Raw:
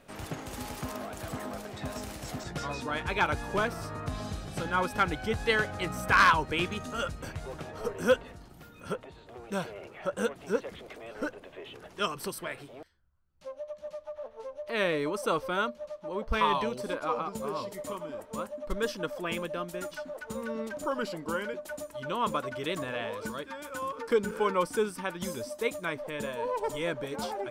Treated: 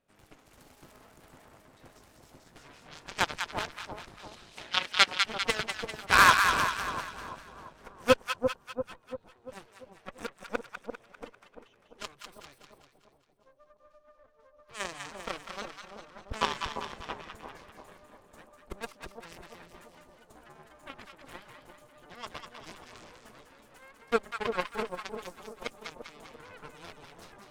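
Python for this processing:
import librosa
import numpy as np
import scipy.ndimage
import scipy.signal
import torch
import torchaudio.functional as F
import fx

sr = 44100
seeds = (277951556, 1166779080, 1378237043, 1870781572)

y = fx.cheby_harmonics(x, sr, harmonics=(3, 8), levels_db=(-9, -33), full_scale_db=-14.0)
y = fx.weighting(y, sr, curve='D', at=(4.19, 5.2))
y = fx.echo_split(y, sr, split_hz=940.0, low_ms=343, high_ms=198, feedback_pct=52, wet_db=-5.5)
y = y * 10.0 ** (3.0 / 20.0)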